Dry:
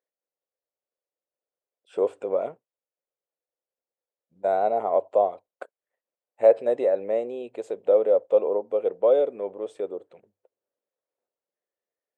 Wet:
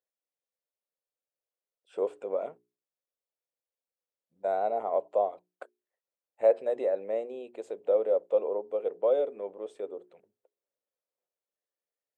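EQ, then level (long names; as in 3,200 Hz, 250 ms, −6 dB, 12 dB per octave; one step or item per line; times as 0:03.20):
high-pass filter 170 Hz 6 dB per octave
mains-hum notches 60/120/180/240/300/360/420 Hz
−5.5 dB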